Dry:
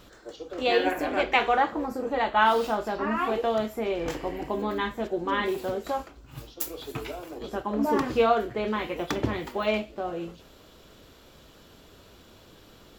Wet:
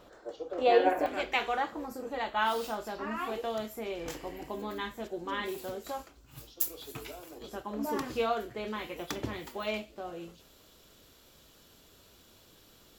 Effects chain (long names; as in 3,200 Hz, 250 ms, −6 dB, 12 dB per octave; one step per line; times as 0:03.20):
parametric band 650 Hz +11.5 dB 2 octaves, from 0:01.06 15,000 Hz
level −9 dB